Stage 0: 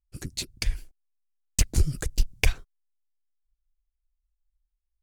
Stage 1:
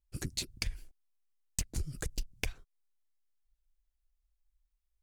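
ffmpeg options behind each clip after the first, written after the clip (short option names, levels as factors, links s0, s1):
-af "acompressor=threshold=0.0282:ratio=12"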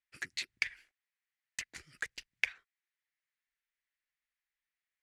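-af "bandpass=f=2300:t=q:w=0.81:csg=0,equalizer=f=1900:w=1.8:g=13"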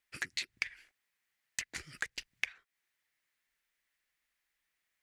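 -af "acompressor=threshold=0.00631:ratio=3,volume=2.66"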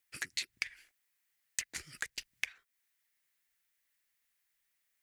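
-af "crystalizer=i=1.5:c=0,volume=0.708"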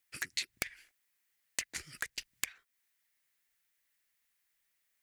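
-af "aeval=exprs='(mod(8.41*val(0)+1,2)-1)/8.41':c=same,volume=1.12"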